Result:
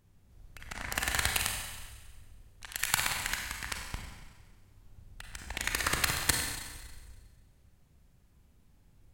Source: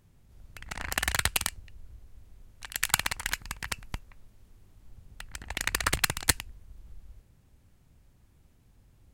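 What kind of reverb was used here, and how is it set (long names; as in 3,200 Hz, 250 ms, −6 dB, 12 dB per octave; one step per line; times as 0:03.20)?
four-comb reverb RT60 1.4 s, combs from 31 ms, DRR 1.5 dB
level −4 dB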